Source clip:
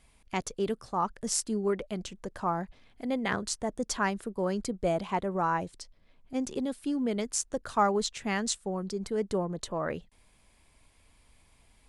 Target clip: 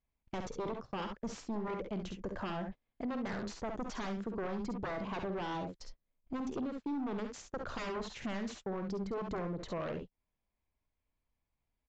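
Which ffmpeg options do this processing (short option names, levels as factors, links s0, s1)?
-filter_complex "[0:a]aeval=exprs='0.0398*(abs(mod(val(0)/0.0398+3,4)-2)-1)':c=same,asplit=2[s0][s1];[s1]aecho=0:1:52|67:0.299|0.376[s2];[s0][s2]amix=inputs=2:normalize=0,acompressor=threshold=0.00708:ratio=5,aresample=16000,asoftclip=type=tanh:threshold=0.0106,aresample=44100,agate=range=0.0251:threshold=0.00282:ratio=16:detection=peak,lowpass=f=1500:p=1,volume=2.82"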